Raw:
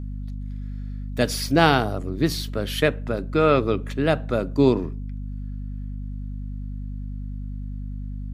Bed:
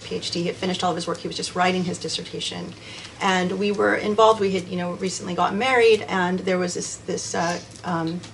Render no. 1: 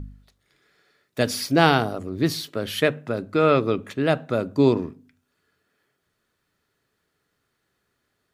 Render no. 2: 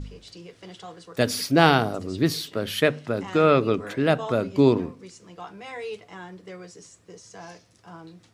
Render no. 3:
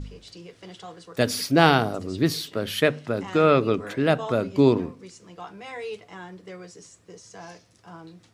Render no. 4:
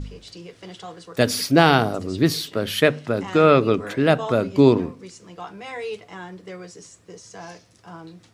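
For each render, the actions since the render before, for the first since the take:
hum removal 50 Hz, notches 5
mix in bed −18.5 dB
no processing that can be heard
level +3.5 dB; brickwall limiter −1 dBFS, peak gain reduction 3 dB

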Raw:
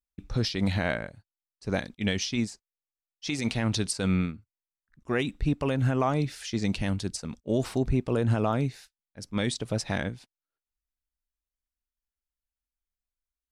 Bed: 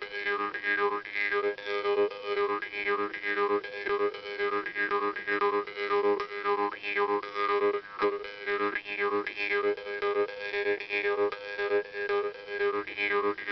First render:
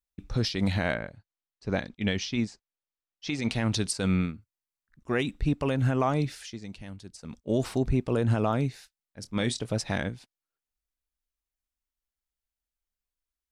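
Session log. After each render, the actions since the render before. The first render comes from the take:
0:00.94–0:03.51: Bessel low-pass filter 4,500 Hz
0:06.32–0:07.42: duck −13.5 dB, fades 0.27 s
0:09.21–0:09.66: double-tracking delay 26 ms −13 dB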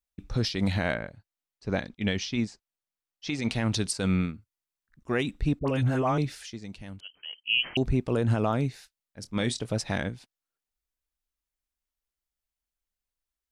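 0:05.59–0:06.18: all-pass dispersion highs, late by 71 ms, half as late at 1,100 Hz
0:07.00–0:07.77: voice inversion scrambler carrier 3,100 Hz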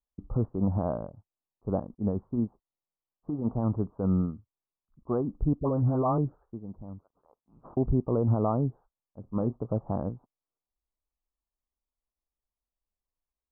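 Butterworth low-pass 1,200 Hz 72 dB per octave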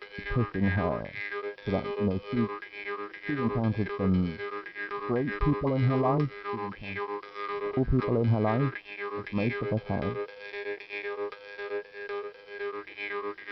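mix in bed −6.5 dB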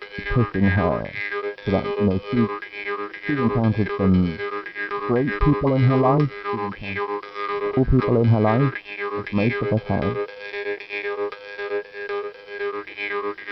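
level +8 dB

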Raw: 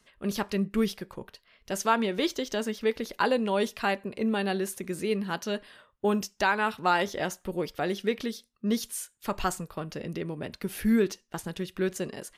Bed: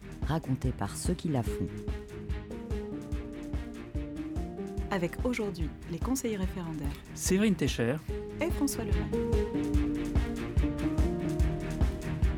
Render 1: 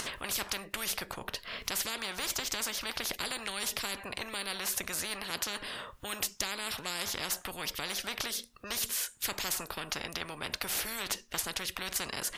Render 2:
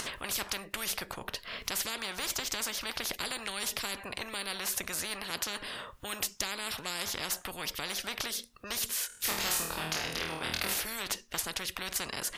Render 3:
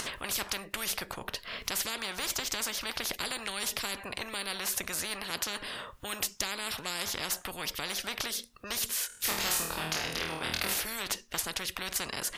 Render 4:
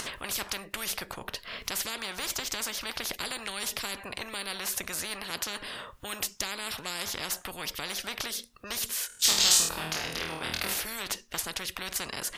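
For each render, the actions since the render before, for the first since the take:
upward compression, threshold −37 dBFS; every bin compressed towards the loudest bin 10 to 1
0:09.07–0:10.74: flutter between parallel walls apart 4.3 metres, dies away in 0.58 s
level +1 dB
0:09.19–0:09.69: flat-topped bell 5,100 Hz +12 dB

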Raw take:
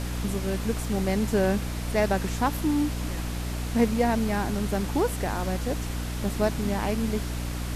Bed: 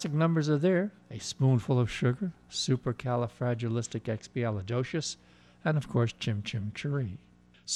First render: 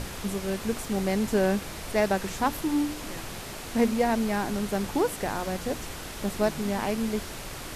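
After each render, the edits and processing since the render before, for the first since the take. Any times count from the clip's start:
mains-hum notches 60/120/180/240/300 Hz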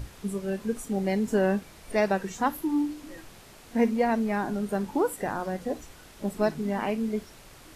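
noise reduction from a noise print 12 dB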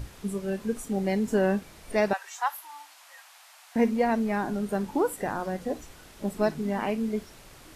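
0:02.13–0:03.76: Butterworth high-pass 730 Hz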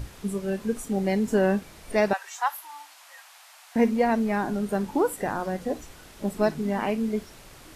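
level +2 dB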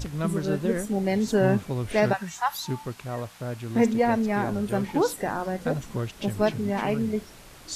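mix in bed −3 dB

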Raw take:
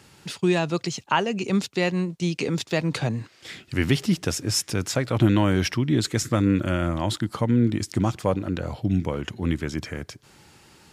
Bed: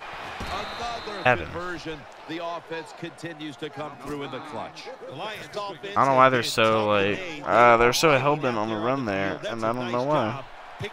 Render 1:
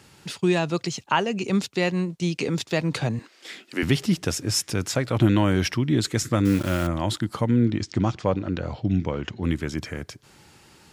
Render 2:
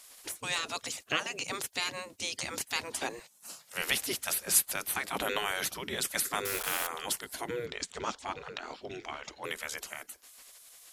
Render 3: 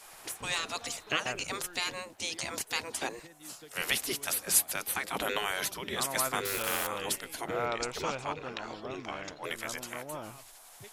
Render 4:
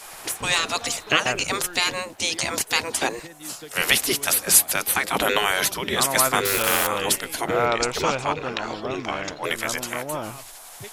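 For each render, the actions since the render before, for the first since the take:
0:03.19–0:03.83: high-pass filter 240 Hz 24 dB per octave; 0:06.45–0:06.87: bit-depth reduction 6 bits, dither none; 0:07.66–0:09.44: low-pass filter 6,200 Hz 24 dB per octave
gate on every frequency bin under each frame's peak −15 dB weak; parametric band 12,000 Hz +12.5 dB 0.91 octaves
mix in bed −18 dB
level +11 dB; brickwall limiter −2 dBFS, peak gain reduction 2 dB

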